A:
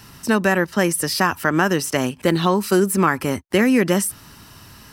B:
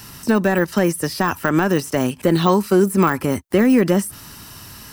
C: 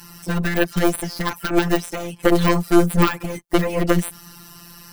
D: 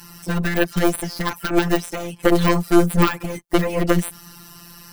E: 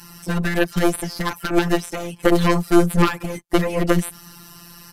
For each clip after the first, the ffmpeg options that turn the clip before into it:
-af "deesser=0.8,highshelf=f=5.8k:g=7.5,volume=3dB"
-af "afftfilt=real='hypot(re,im)*cos(PI*b)':imag='0':win_size=1024:overlap=0.75,aeval=exprs='0.944*(cos(1*acos(clip(val(0)/0.944,-1,1)))-cos(1*PI/2))+0.15*(cos(8*acos(clip(val(0)/0.944,-1,1)))-cos(8*PI/2))':c=same,volume=2dB"
-af anull
-af "aresample=32000,aresample=44100"

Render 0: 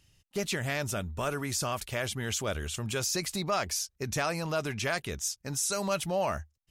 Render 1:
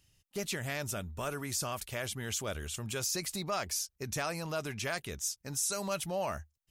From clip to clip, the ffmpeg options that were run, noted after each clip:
-af "highshelf=f=8.3k:g=7,volume=-5dB"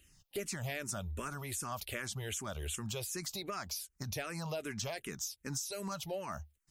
-filter_complex "[0:a]acompressor=threshold=-41dB:ratio=6,asplit=2[a][b];[b]afreqshift=-2.6[c];[a][c]amix=inputs=2:normalize=1,volume=7.5dB"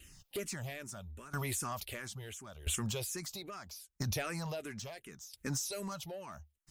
-filter_complex "[0:a]asplit=2[a][b];[b]alimiter=level_in=11.5dB:limit=-24dB:level=0:latency=1:release=96,volume=-11.5dB,volume=-2dB[c];[a][c]amix=inputs=2:normalize=0,asoftclip=type=tanh:threshold=-28.5dB,aeval=exprs='val(0)*pow(10,-18*if(lt(mod(0.75*n/s,1),2*abs(0.75)/1000),1-mod(0.75*n/s,1)/(2*abs(0.75)/1000),(mod(0.75*n/s,1)-2*abs(0.75)/1000)/(1-2*abs(0.75)/1000))/20)':c=same,volume=4dB"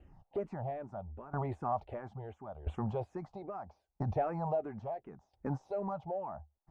-af "lowpass=f=790:t=q:w=4.9,volume=1dB"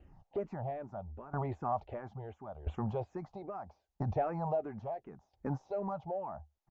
-af "aresample=16000,aresample=44100"

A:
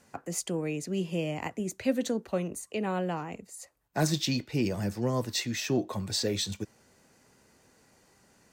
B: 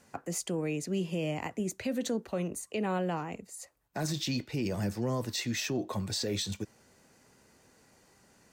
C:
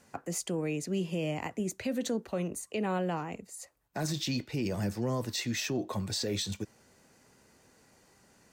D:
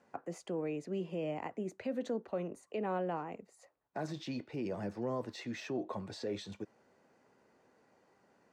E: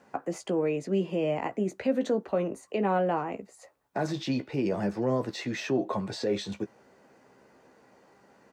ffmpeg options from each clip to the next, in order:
-af "alimiter=limit=-23.5dB:level=0:latency=1:release=39"
-af anull
-af "bandpass=f=620:t=q:w=0.58:csg=0,volume=-2dB"
-filter_complex "[0:a]asplit=2[a][b];[b]adelay=15,volume=-9dB[c];[a][c]amix=inputs=2:normalize=0,volume=9dB"

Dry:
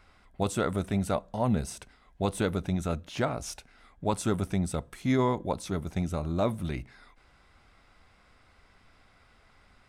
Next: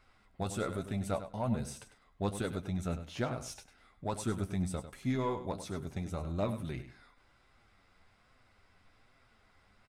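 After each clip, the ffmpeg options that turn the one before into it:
-filter_complex "[0:a]asplit=2[a][b];[b]aeval=exprs='0.188*sin(PI/2*1.78*val(0)/0.188)':c=same,volume=-11dB[c];[a][c]amix=inputs=2:normalize=0,flanger=delay=7.3:depth=4.2:regen=41:speed=1.2:shape=triangular,aecho=1:1:99|198:0.266|0.0426,volume=-7dB"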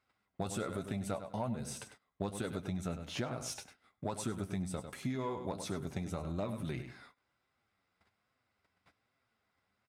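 -af "agate=range=-18dB:threshold=-60dB:ratio=16:detection=peak,highpass=99,acompressor=threshold=-39dB:ratio=6,volume=5dB"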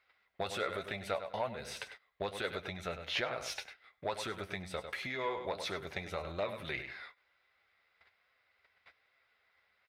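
-af "equalizer=f=125:t=o:w=1:g=-9,equalizer=f=250:t=o:w=1:g=-11,equalizer=f=500:t=o:w=1:g=6,equalizer=f=2k:t=o:w=1:g=11,equalizer=f=4k:t=o:w=1:g=8,equalizer=f=8k:t=o:w=1:g=-10"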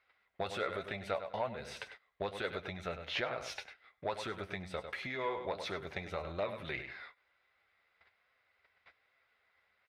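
-af "lowpass=f=3.7k:p=1"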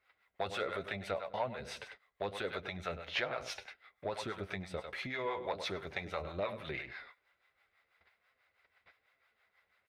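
-filter_complex "[0:a]acrossover=split=530[a][b];[a]aeval=exprs='val(0)*(1-0.7/2+0.7/2*cos(2*PI*6.1*n/s))':c=same[c];[b]aeval=exprs='val(0)*(1-0.7/2-0.7/2*cos(2*PI*6.1*n/s))':c=same[d];[c][d]amix=inputs=2:normalize=0,volume=3.5dB"

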